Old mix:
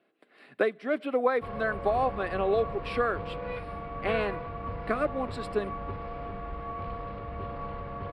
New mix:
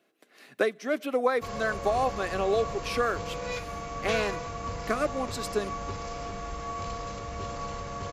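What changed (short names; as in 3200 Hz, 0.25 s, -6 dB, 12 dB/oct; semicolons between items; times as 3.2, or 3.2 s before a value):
background: remove air absorption 300 m; master: remove running mean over 7 samples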